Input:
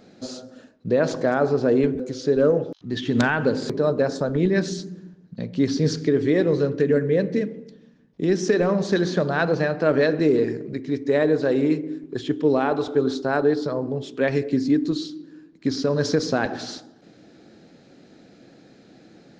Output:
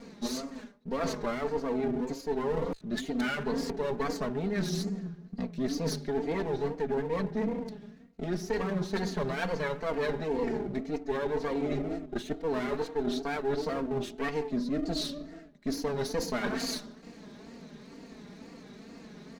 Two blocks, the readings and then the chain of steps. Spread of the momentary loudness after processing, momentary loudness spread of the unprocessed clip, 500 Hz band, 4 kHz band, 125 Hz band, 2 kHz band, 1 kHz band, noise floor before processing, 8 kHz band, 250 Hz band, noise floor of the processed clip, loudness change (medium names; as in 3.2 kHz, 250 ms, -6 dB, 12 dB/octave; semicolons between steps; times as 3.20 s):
17 LU, 12 LU, -10.5 dB, -5.5 dB, -10.5 dB, -9.5 dB, -6.0 dB, -52 dBFS, no reading, -10.0 dB, -51 dBFS, -10.5 dB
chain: comb filter that takes the minimum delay 0.47 ms; comb 4.6 ms, depth 95%; reverse; compression 6:1, threshold -29 dBFS, peak gain reduction 17.5 dB; reverse; wow and flutter 120 cents